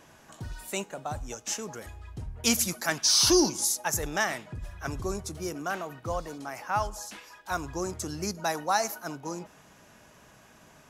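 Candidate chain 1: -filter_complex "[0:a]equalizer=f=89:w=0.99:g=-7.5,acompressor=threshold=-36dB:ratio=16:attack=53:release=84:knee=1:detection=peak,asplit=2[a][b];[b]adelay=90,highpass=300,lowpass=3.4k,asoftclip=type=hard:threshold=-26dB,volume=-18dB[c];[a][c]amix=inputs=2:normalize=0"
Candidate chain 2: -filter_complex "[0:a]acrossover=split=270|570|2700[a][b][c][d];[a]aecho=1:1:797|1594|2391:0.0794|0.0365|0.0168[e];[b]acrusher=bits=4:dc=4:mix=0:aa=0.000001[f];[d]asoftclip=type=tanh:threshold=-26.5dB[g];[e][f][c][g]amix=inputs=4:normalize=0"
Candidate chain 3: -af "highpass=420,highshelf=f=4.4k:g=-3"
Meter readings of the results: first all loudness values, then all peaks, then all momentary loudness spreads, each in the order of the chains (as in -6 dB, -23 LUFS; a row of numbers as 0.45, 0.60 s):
-36.0, -31.5, -30.5 LUFS; -17.0, -12.5, -10.5 dBFS; 19, 16, 18 LU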